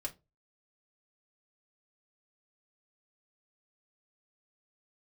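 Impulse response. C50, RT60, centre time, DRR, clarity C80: 19.5 dB, 0.25 s, 7 ms, −1.0 dB, 28.0 dB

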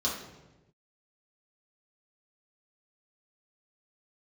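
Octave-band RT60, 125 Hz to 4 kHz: 1.3, 1.3, 1.2, 0.95, 0.90, 0.75 seconds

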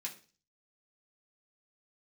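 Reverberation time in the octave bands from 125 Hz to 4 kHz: 0.55, 0.45, 0.40, 0.35, 0.35, 0.45 seconds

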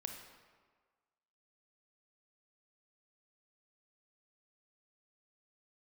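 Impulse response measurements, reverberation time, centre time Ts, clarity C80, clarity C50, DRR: 1.5 s, 39 ms, 7.0 dB, 5.0 dB, 3.5 dB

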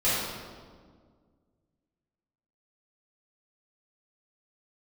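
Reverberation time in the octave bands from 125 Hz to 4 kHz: 2.3, 2.3, 1.9, 1.6, 1.2, 1.1 seconds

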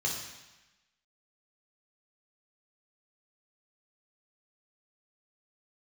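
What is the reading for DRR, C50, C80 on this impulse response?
−3.0 dB, 3.0 dB, 6.0 dB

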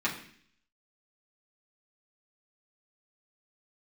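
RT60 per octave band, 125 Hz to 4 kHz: 0.70, 0.70, 0.60, 0.55, 0.70, 0.70 seconds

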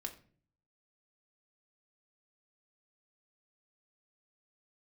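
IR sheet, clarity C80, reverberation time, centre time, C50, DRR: 17.0 dB, 0.45 s, 9 ms, 13.0 dB, 2.5 dB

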